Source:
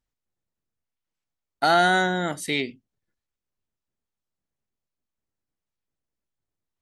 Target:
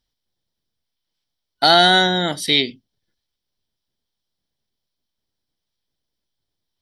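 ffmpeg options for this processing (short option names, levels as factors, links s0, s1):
-af "superequalizer=10b=0.708:13b=3.16:14b=2.82:15b=0.631,volume=1.78"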